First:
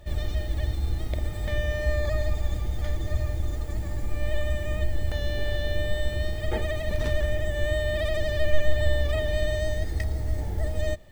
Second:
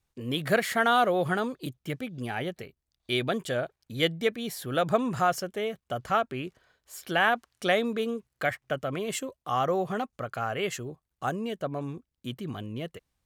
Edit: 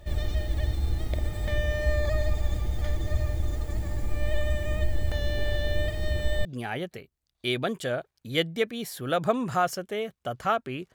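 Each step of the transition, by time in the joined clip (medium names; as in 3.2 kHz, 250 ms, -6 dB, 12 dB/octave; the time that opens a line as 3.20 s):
first
5.88–6.45 s: reverse
6.45 s: go over to second from 2.10 s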